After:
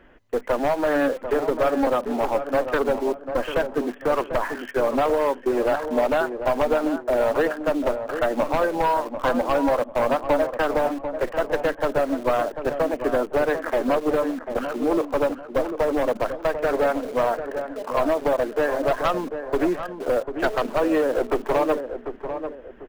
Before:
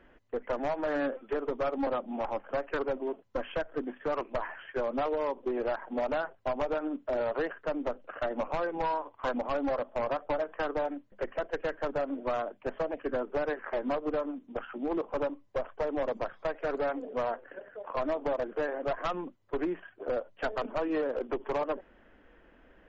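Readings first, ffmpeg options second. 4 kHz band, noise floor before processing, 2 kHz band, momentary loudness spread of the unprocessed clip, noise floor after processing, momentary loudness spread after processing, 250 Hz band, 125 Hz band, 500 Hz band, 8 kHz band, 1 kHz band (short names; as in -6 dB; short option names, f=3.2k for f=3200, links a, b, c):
+10.5 dB, -61 dBFS, +10.0 dB, 6 LU, -41 dBFS, 5 LU, +10.0 dB, +10.0 dB, +10.0 dB, n/a, +10.0 dB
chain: -filter_complex "[0:a]asplit=2[a][b];[b]acrusher=bits=6:mix=0:aa=0.000001,volume=-7.5dB[c];[a][c]amix=inputs=2:normalize=0,asplit=2[d][e];[e]adelay=744,lowpass=f=1.3k:p=1,volume=-8dB,asplit=2[f][g];[g]adelay=744,lowpass=f=1.3k:p=1,volume=0.35,asplit=2[h][i];[i]adelay=744,lowpass=f=1.3k:p=1,volume=0.35,asplit=2[j][k];[k]adelay=744,lowpass=f=1.3k:p=1,volume=0.35[l];[d][f][h][j][l]amix=inputs=5:normalize=0,volume=6.5dB"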